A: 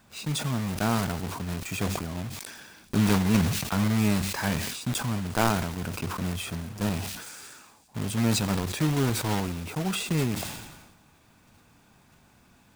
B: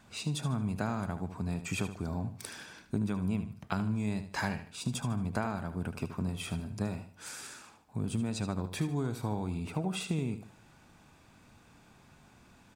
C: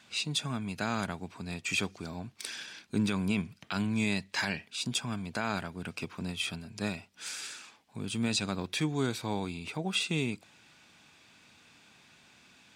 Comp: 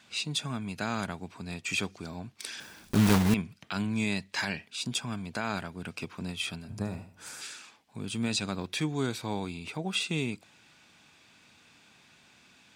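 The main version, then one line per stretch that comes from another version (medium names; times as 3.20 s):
C
2.60–3.34 s: from A
6.69–7.41 s: from B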